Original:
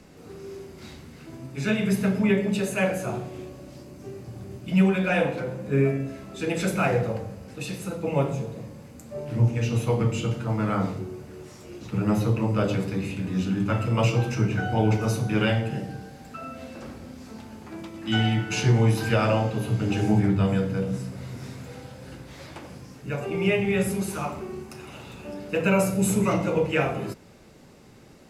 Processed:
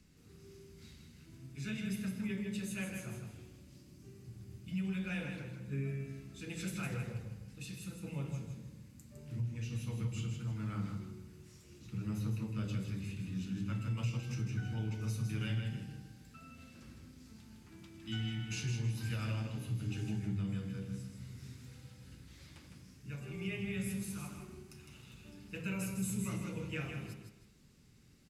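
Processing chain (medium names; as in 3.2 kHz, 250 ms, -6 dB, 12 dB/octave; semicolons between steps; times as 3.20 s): amplifier tone stack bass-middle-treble 6-0-2; compression, threshold -37 dBFS, peak gain reduction 8 dB; feedback delay 158 ms, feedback 31%, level -6 dB; trim +3.5 dB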